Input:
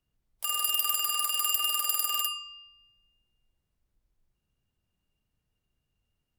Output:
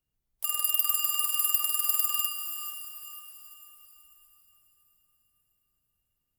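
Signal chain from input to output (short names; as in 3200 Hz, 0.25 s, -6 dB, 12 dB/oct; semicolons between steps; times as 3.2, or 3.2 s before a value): high shelf 9900 Hz +11 dB; diffused feedback echo 0.492 s, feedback 44%, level -9 dB; gain -5.5 dB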